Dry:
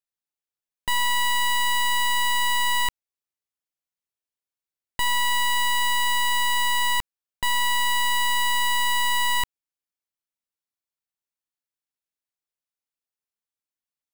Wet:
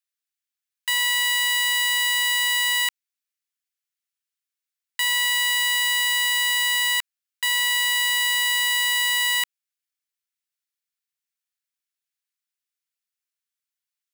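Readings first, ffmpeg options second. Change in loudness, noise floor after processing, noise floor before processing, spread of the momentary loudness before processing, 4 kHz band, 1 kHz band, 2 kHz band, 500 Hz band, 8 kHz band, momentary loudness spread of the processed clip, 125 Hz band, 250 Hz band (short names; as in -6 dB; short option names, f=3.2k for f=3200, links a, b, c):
+3.0 dB, under -85 dBFS, under -85 dBFS, 5 LU, +4.0 dB, -9.0 dB, +3.5 dB, under -25 dB, +4.0 dB, 5 LU, n/a, under -40 dB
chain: -af "highpass=f=1.4k:w=0.5412,highpass=f=1.4k:w=1.3066,volume=4dB"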